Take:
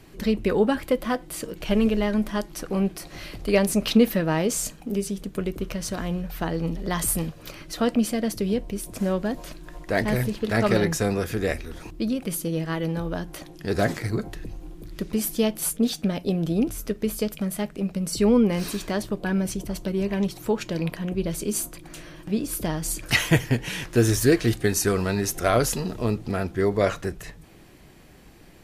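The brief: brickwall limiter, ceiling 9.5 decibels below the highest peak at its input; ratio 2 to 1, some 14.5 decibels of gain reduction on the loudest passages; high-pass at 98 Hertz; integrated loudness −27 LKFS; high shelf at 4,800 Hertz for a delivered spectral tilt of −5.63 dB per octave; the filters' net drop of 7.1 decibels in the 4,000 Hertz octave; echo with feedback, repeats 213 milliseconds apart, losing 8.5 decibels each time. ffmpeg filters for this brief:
ffmpeg -i in.wav -af "highpass=98,equalizer=frequency=4000:width_type=o:gain=-6,highshelf=frequency=4800:gain=-7.5,acompressor=threshold=-41dB:ratio=2,alimiter=level_in=4.5dB:limit=-24dB:level=0:latency=1,volume=-4.5dB,aecho=1:1:213|426|639|852:0.376|0.143|0.0543|0.0206,volume=11.5dB" out.wav

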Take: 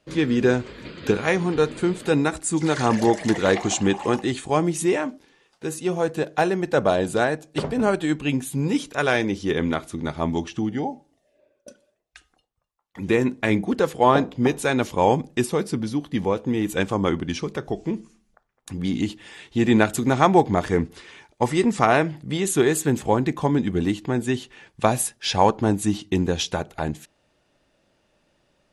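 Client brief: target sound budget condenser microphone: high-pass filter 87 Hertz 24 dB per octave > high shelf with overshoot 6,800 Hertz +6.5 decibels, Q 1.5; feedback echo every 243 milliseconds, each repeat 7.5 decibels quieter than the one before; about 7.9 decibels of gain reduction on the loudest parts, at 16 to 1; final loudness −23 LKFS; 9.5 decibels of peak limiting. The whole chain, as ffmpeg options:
ffmpeg -i in.wav -af "acompressor=threshold=-19dB:ratio=16,alimiter=limit=-16.5dB:level=0:latency=1,highpass=frequency=87:width=0.5412,highpass=frequency=87:width=1.3066,highshelf=frequency=6800:width_type=q:width=1.5:gain=6.5,aecho=1:1:243|486|729|972|1215:0.422|0.177|0.0744|0.0312|0.0131,volume=3.5dB" out.wav

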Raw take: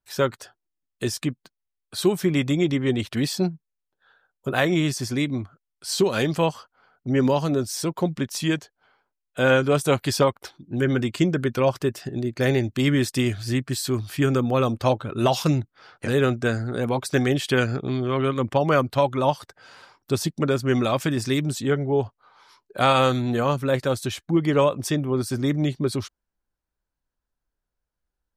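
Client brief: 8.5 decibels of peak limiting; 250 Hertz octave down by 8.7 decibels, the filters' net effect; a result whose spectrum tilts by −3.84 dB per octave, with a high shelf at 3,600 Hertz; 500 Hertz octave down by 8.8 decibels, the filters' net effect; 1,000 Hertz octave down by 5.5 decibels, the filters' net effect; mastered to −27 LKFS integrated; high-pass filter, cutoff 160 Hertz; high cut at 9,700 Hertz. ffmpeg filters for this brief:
ffmpeg -i in.wav -af "highpass=160,lowpass=9700,equalizer=frequency=250:width_type=o:gain=-7.5,equalizer=frequency=500:width_type=o:gain=-7.5,equalizer=frequency=1000:width_type=o:gain=-5,highshelf=frequency=3600:gain=3,volume=3dB,alimiter=limit=-12.5dB:level=0:latency=1" out.wav

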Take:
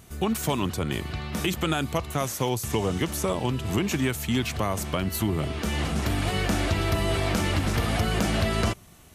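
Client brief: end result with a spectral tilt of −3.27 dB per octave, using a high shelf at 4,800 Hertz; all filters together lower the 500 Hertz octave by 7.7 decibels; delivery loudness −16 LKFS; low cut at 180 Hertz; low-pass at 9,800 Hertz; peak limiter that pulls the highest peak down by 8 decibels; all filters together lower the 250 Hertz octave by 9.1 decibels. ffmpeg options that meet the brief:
ffmpeg -i in.wav -af "highpass=180,lowpass=9800,equalizer=frequency=250:width_type=o:gain=-8,equalizer=frequency=500:width_type=o:gain=-8,highshelf=frequency=4800:gain=7,volume=15.5dB,alimiter=limit=-5.5dB:level=0:latency=1" out.wav

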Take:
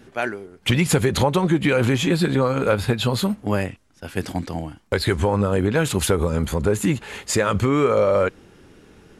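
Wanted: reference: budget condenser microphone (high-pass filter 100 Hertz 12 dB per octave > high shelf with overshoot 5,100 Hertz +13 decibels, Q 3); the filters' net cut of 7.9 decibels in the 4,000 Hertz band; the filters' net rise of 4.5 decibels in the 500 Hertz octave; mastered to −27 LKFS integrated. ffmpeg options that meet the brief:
ffmpeg -i in.wav -af "highpass=100,equalizer=frequency=500:width_type=o:gain=5.5,equalizer=frequency=4000:width_type=o:gain=-8.5,highshelf=frequency=5100:width_type=q:width=3:gain=13,volume=-11dB" out.wav

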